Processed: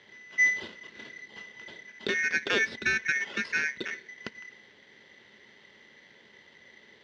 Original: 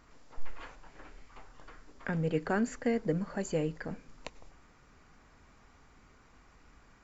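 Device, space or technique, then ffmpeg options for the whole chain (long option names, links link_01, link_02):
ring modulator pedal into a guitar cabinet: -af "aeval=exprs='val(0)*sgn(sin(2*PI*2000*n/s))':channel_layout=same,highpass=98,equalizer=frequency=220:width_type=q:width=4:gain=9,equalizer=frequency=410:width_type=q:width=4:gain=8,equalizer=frequency=760:width_type=q:width=4:gain=-8,equalizer=frequency=1200:width_type=q:width=4:gain=-9,equalizer=frequency=2400:width_type=q:width=4:gain=-8,lowpass=frequency=4200:width=0.5412,lowpass=frequency=4200:width=1.3066,volume=7dB"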